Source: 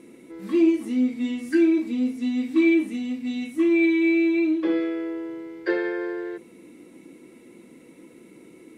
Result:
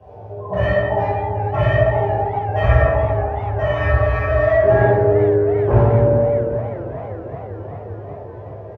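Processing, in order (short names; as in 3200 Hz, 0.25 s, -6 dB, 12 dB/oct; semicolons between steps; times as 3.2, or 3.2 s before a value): spectrum mirrored in octaves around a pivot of 450 Hz; notch 820 Hz, Q 16; wavefolder -23 dBFS; requantised 10-bit, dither none; doubler 17 ms -3.5 dB; darkening echo 68 ms, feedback 77%, low-pass 1100 Hz, level -5 dB; reverb RT60 1.2 s, pre-delay 3 ms, DRR -10 dB; warbling echo 0.392 s, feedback 77%, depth 123 cents, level -16 dB; gain -15.5 dB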